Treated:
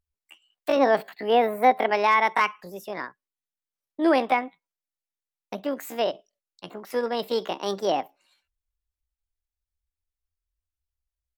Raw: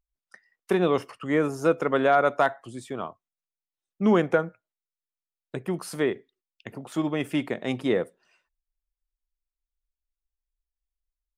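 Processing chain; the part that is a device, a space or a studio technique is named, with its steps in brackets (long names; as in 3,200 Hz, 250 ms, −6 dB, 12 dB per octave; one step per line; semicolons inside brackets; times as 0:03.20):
0:00.77–0:01.92: drawn EQ curve 110 Hz 0 dB, 170 Hz +4 dB, 360 Hz +4 dB, 2,500 Hz −1 dB, 5,500 Hz −9 dB, 11,000 Hz +7 dB
chipmunk voice (pitch shifter +7.5 semitones)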